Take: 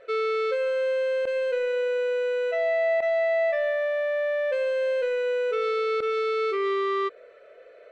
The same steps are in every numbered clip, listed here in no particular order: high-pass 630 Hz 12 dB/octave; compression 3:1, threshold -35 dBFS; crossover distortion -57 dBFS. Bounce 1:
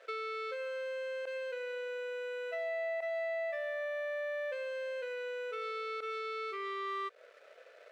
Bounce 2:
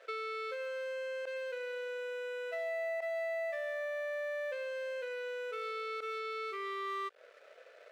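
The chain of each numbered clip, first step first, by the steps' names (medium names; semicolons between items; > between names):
crossover distortion > compression > high-pass; compression > crossover distortion > high-pass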